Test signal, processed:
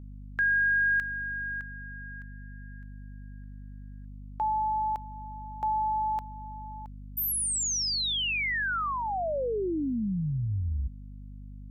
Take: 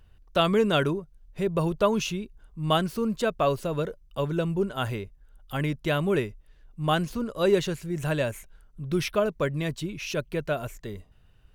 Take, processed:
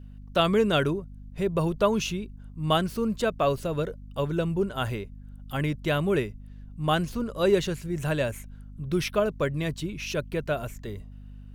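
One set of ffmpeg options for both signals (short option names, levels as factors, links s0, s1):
-af "adynamicequalizer=threshold=0.01:dfrequency=970:dqfactor=2.9:tfrequency=970:tqfactor=2.9:attack=5:release=100:ratio=0.375:range=2:mode=cutabove:tftype=bell,aeval=exprs='val(0)+0.00794*(sin(2*PI*50*n/s)+sin(2*PI*2*50*n/s)/2+sin(2*PI*3*50*n/s)/3+sin(2*PI*4*50*n/s)/4+sin(2*PI*5*50*n/s)/5)':c=same"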